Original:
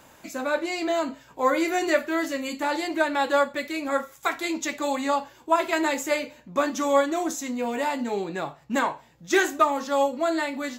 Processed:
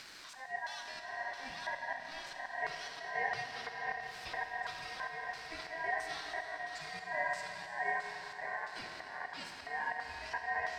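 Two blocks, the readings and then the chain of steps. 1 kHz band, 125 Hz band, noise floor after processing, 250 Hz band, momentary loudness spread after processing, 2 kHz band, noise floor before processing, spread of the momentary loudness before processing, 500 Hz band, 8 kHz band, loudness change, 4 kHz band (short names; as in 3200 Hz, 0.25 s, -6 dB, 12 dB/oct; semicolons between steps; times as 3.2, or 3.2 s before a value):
-13.0 dB, -10.5 dB, -50 dBFS, -32.0 dB, 8 LU, -8.0 dB, -54 dBFS, 7 LU, -21.0 dB, -19.0 dB, -14.0 dB, -11.0 dB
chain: zero-crossing step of -30.5 dBFS; on a send: diffused feedback echo 0.565 s, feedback 57%, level -4.5 dB; on the sum: LFO band-pass square 1.5 Hz 580–2900 Hz; auto swell 0.212 s; ten-band EQ 125 Hz +11 dB, 1000 Hz -9 dB, 2000 Hz -11 dB, 8000 Hz -4 dB; Schroeder reverb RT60 2.9 s, combs from 26 ms, DRR 5 dB; in parallel at -2.5 dB: upward compressor, threshold -35 dBFS; on the sum: ring modulator 1300 Hz; high shelf 11000 Hz -7.5 dB; gain -6 dB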